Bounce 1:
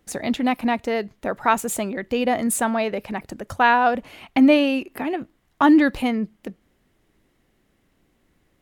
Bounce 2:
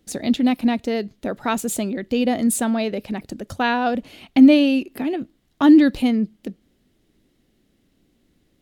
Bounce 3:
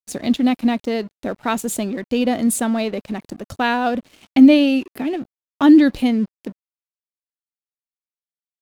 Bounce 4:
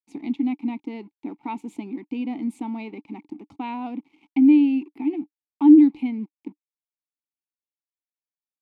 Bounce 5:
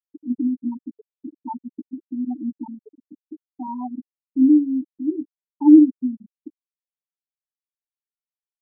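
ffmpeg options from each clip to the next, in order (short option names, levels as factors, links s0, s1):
-af "equalizer=f=250:t=o:w=1:g=5,equalizer=f=1000:t=o:w=1:g=-7,equalizer=f=2000:t=o:w=1:g=-4,equalizer=f=4000:t=o:w=1:g=5"
-af "aeval=exprs='sgn(val(0))*max(abs(val(0))-0.00668,0)':c=same,volume=1.19"
-filter_complex "[0:a]asplit=2[s0][s1];[s1]alimiter=limit=0.251:level=0:latency=1:release=162,volume=1.12[s2];[s0][s2]amix=inputs=2:normalize=0,asplit=3[s3][s4][s5];[s3]bandpass=f=300:t=q:w=8,volume=1[s6];[s4]bandpass=f=870:t=q:w=8,volume=0.501[s7];[s5]bandpass=f=2240:t=q:w=8,volume=0.355[s8];[s6][s7][s8]amix=inputs=3:normalize=0,volume=0.668"
-filter_complex "[0:a]highpass=f=150:p=1,asplit=2[s0][s1];[s1]adelay=16,volume=0.631[s2];[s0][s2]amix=inputs=2:normalize=0,afftfilt=real='re*gte(hypot(re,im),0.2)':imag='im*gte(hypot(re,im),0.2)':win_size=1024:overlap=0.75"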